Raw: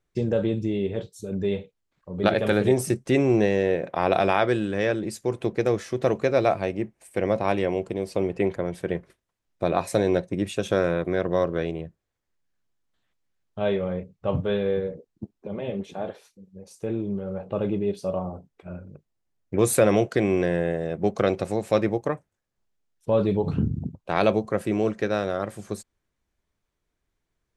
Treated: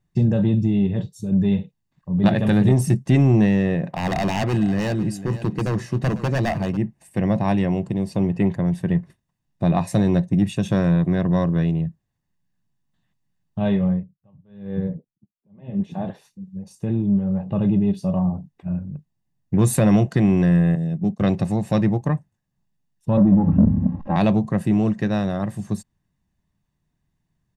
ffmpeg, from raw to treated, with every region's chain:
-filter_complex "[0:a]asettb=1/sr,asplit=3[a][b][c];[a]atrim=end=3.864[d];[b]atrim=start=3.86:end=6.77,asetpts=PTS-STARTPTS,afade=t=in:d=0.004:c=qsin,afade=t=out:st=2.906:d=0.004:c=qsin,aeval=exprs='0.133*(abs(mod(val(0)/0.133+3,4)-2)-1)':c=same,bandreject=f=3.5k:w=13,aecho=1:1:499|998:0.2|0.0299,atrim=end_sample=128331[e];[c]atrim=start=6.766[f];[d][e]acrossfade=d=0.004:c1=hsin:c2=qsin[g];[g][f]acrossfade=d=0.004:c1=qsin:c2=hsin,asettb=1/sr,asplit=3[h][i][j];[h]atrim=end=13.864[k];[i]atrim=start=13.86:end=15.91,asetpts=PTS-STARTPTS,afade=t=in:d=0.004:c=qsin,afade=t=out:st=2.046:d=0.004:c=qsin,highshelf=f=3.5k:g=-10.5,aeval=exprs='val(0)*pow(10,-37*(0.5-0.5*cos(2*PI*1*n/s))/20)':c=same[l];[j]atrim=start=15.906[m];[k][l]acrossfade=d=0.004:c1=hsin:c2=qsin[n];[n][m]acrossfade=d=0.004:c1=qsin:c2=hsin,asettb=1/sr,asplit=3[o][p][q];[o]atrim=end=20.754[r];[p]atrim=start=20.75:end=21.21,asetpts=PTS-STARTPTS,afade=t=in:d=0.004:c=qsin,afade=t=out:st=0.456:d=0.004:c=qsin,agate=range=-19dB:threshold=-36dB:ratio=16:release=100:detection=peak,highpass=140,equalizer=f=1.3k:w=0.33:g=-11[s];[q]atrim=start=21.206[t];[r][s]acrossfade=d=0.004:c1=hsin:c2=qsin[u];[u][t]acrossfade=d=0.004:c1=qsin:c2=hsin,asettb=1/sr,asplit=3[v][w][x];[v]atrim=end=23.174[y];[w]atrim=start=23.17:end=24.16,asetpts=PTS-STARTPTS,afade=t=in:d=0.004:c=qsin,afade=t=out:st=0.986:d=0.004:c=qsin,aeval=exprs='val(0)+0.5*0.015*sgn(val(0))':c=same,lowpass=1k,aecho=1:1:3.7:0.91,atrim=end_sample=43659[z];[x]atrim=start=24.156[aa];[y][z]acrossfade=d=0.004:c1=hsin:c2=qsin[ab];[ab][aa]acrossfade=d=0.004:c1=qsin:c2=hsin,equalizer=f=160:w=0.94:g=14.5,aecho=1:1:1.1:0.51,acontrast=29,volume=-6.5dB"

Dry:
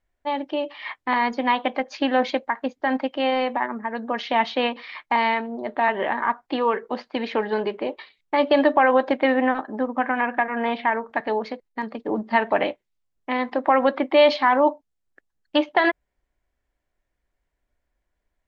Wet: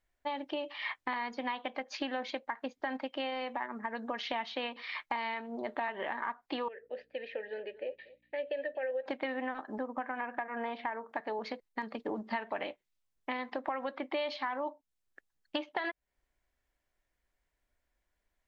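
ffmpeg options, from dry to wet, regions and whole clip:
-filter_complex "[0:a]asettb=1/sr,asplit=3[a][b][c];[a]atrim=end=6.684[d];[b]atrim=start=6.68:end=9.06,asetpts=PTS-STARTPTS,afade=t=in:d=0.004:c=qsin,afade=t=out:st=2.376:d=0.004:c=qsin,aeval=exprs='val(0)+0.00708*(sin(2*PI*60*n/s)+sin(2*PI*2*60*n/s)/2+sin(2*PI*3*60*n/s)/3+sin(2*PI*4*60*n/s)/4+sin(2*PI*5*60*n/s)/5)':c=same,asplit=3[e][f][g];[e]bandpass=f=530:t=q:w=8,volume=0dB[h];[f]bandpass=f=1.84k:t=q:w=8,volume=-6dB[i];[g]bandpass=f=2.48k:t=q:w=8,volume=-9dB[j];[h][i][j]amix=inputs=3:normalize=0,aecho=1:1:238:0.0891,atrim=end_sample=104958[k];[c]atrim=start=9.056[l];[d][k]acrossfade=d=0.004:c1=hsin:c2=qsin[m];[m][l]acrossfade=d=0.004:c1=qsin:c2=hsin,asettb=1/sr,asplit=3[n][o][p];[n]atrim=end=9.784[q];[o]atrim=start=9.78:end=11.39,asetpts=PTS-STARTPTS,afade=t=in:d=0.004:c=qsin,afade=t=out:st=1.606:d=0.004:c=qsin,highpass=f=250:p=1,equalizer=f=3.2k:t=o:w=2.2:g=-7.5[r];[p]atrim=start=11.386[s];[q][r]acrossfade=d=0.004:c1=hsin:c2=qsin[t];[t][s]acrossfade=d=0.004:c1=qsin:c2=hsin,tiltshelf=f=970:g=-3,acompressor=threshold=-30dB:ratio=6,volume=-3dB"

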